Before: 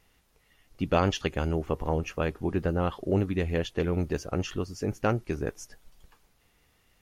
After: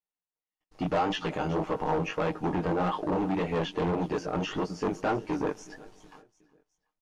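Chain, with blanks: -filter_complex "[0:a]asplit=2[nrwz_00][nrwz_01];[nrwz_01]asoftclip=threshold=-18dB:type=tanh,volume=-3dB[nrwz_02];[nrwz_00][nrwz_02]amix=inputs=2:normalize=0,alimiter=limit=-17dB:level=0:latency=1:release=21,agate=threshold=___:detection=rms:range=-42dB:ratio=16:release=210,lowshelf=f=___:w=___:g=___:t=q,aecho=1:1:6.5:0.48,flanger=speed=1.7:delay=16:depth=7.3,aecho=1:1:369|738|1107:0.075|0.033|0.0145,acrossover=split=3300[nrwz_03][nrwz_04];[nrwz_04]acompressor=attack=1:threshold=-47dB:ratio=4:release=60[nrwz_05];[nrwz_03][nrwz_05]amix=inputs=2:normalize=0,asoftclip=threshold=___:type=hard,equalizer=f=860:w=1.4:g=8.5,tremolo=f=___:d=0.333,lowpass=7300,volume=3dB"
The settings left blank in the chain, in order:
-51dB, 140, 1.5, -10, -27.5dB, 100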